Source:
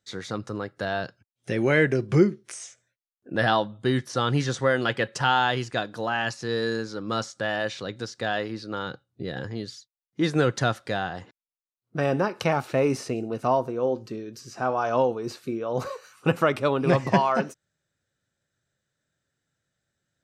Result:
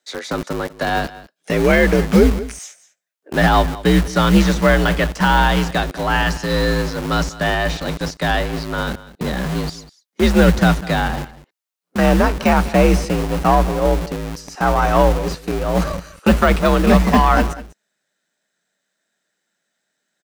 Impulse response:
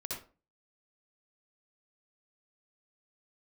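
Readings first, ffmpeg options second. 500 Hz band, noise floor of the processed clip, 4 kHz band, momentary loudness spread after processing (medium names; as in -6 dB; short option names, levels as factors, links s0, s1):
+7.0 dB, -75 dBFS, +8.0 dB, 12 LU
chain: -filter_complex "[0:a]aeval=exprs='if(lt(val(0),0),0.708*val(0),val(0))':c=same,deesser=0.9,afreqshift=54,asubboost=boost=5:cutoff=140,acrossover=split=290|820[s0][s1][s2];[s0]acrusher=bits=5:mix=0:aa=0.000001[s3];[s3][s1][s2]amix=inputs=3:normalize=0,aeval=exprs='0.376*(cos(1*acos(clip(val(0)/0.376,-1,1)))-cos(1*PI/2))+0.0119*(cos(7*acos(clip(val(0)/0.376,-1,1)))-cos(7*PI/2))':c=same,aecho=1:1:197:0.126,alimiter=level_in=4.22:limit=0.891:release=50:level=0:latency=1,volume=0.891"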